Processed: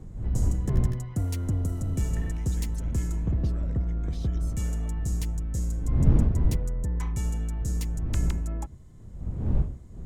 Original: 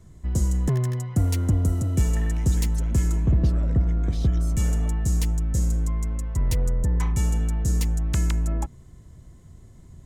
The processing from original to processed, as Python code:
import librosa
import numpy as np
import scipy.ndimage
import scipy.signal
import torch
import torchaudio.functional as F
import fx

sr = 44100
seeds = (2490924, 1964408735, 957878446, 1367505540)

p1 = fx.dmg_wind(x, sr, seeds[0], corner_hz=91.0, level_db=-22.0)
p2 = 10.0 ** (-25.5 / 20.0) * np.tanh(p1 / 10.0 ** (-25.5 / 20.0))
p3 = p1 + (p2 * librosa.db_to_amplitude(-10.5))
y = p3 * librosa.db_to_amplitude(-7.5)